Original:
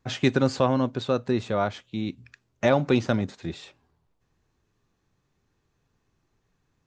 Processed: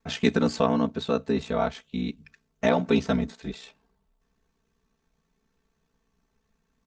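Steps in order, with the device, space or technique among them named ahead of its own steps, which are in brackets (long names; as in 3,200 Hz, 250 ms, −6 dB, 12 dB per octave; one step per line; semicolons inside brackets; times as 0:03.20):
ring-modulated robot voice (ring modulation 31 Hz; comb filter 4.5 ms, depth 87%)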